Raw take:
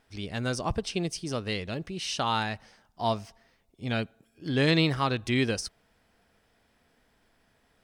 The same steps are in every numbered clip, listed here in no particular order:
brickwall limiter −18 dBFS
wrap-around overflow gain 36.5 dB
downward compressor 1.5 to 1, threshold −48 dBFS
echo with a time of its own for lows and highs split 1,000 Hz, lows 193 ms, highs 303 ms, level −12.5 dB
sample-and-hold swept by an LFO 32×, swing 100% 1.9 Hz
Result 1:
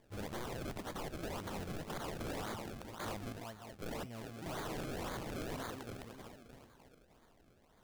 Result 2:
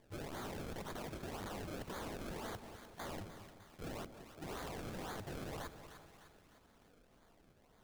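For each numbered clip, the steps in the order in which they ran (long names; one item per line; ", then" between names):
echo with a time of its own for lows and highs, then sample-and-hold swept by an LFO, then brickwall limiter, then downward compressor, then wrap-around overflow
sample-and-hold swept by an LFO, then brickwall limiter, then wrap-around overflow, then echo with a time of its own for lows and highs, then downward compressor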